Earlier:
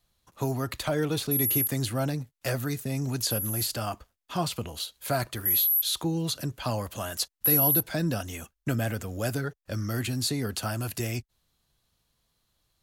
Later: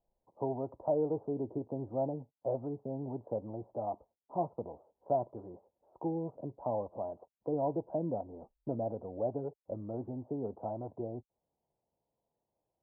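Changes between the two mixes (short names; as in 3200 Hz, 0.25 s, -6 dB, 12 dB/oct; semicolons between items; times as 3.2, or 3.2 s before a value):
speech: add band-pass 600 Hz, Q 1; master: add Chebyshev low-pass 930 Hz, order 5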